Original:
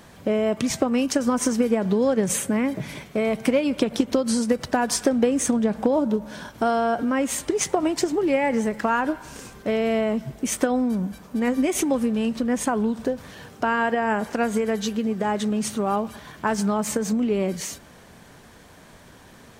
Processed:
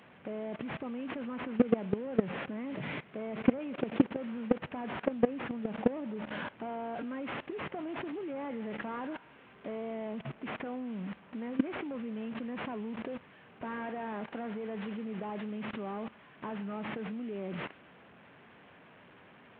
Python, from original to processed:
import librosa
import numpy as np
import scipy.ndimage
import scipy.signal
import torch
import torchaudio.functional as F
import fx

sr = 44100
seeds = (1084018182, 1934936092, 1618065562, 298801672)

y = fx.delta_mod(x, sr, bps=16000, step_db=-32.5)
y = scipy.signal.sosfilt(scipy.signal.butter(2, 130.0, 'highpass', fs=sr, output='sos'), y)
y = fx.level_steps(y, sr, step_db=19)